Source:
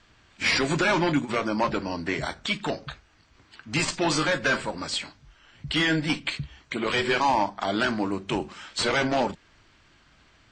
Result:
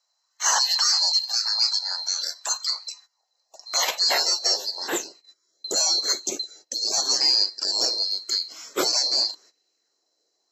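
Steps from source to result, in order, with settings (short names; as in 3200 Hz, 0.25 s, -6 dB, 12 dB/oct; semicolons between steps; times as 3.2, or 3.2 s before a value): band-swap scrambler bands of 4000 Hz; gate -50 dBFS, range -17 dB; high-pass sweep 1000 Hz -> 350 Hz, 2.96–5.01; 1.24–1.78 doubler 32 ms -10.5 dB; LFO bell 0.88 Hz 530–2700 Hz +8 dB; gain +1 dB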